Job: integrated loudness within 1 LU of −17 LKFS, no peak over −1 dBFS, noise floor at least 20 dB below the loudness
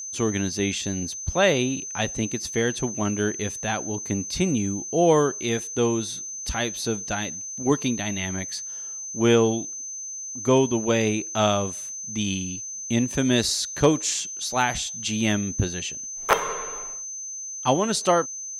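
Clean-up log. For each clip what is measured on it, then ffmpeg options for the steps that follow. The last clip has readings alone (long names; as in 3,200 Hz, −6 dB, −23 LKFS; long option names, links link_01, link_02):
interfering tone 6,200 Hz; level of the tone −32 dBFS; integrated loudness −24.5 LKFS; sample peak −7.0 dBFS; target loudness −17.0 LKFS
→ -af "bandreject=frequency=6200:width=30"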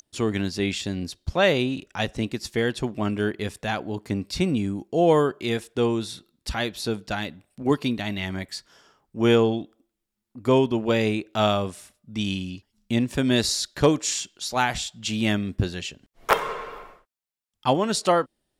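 interfering tone none found; integrated loudness −25.0 LKFS; sample peak −7.5 dBFS; target loudness −17.0 LKFS
→ -af "volume=8dB,alimiter=limit=-1dB:level=0:latency=1"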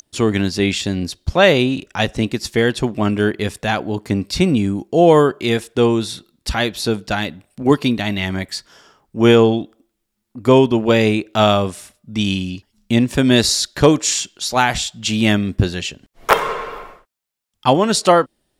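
integrated loudness −17.0 LKFS; sample peak −1.0 dBFS; background noise floor −73 dBFS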